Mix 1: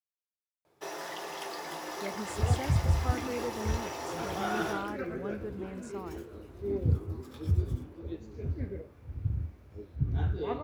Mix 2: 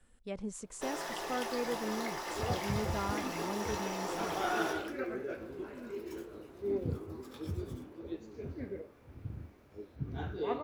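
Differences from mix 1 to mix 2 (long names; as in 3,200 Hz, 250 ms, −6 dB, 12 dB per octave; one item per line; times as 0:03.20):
speech: entry −1.75 s
second sound: add high-pass filter 220 Hz 12 dB per octave
master: remove high-pass filter 94 Hz 12 dB per octave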